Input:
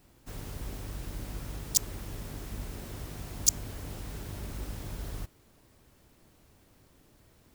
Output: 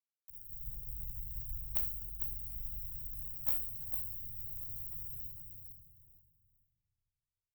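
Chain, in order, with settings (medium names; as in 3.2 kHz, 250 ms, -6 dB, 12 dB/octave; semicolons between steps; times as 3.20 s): feedback comb 57 Hz, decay 0.33 s, harmonics all, mix 90%; ring modulator 38 Hz, from 2.67 s 420 Hz; peaking EQ 520 Hz +5.5 dB 2 oct; bit crusher 7-bit; frequency shift -42 Hz; inverse Chebyshev band-stop 610–5200 Hz, stop band 80 dB; treble shelf 9.1 kHz +12 dB; feedback delay 452 ms, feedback 23%, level -6 dB; simulated room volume 1100 m³, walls mixed, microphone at 2.5 m; valve stage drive 17 dB, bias 0.35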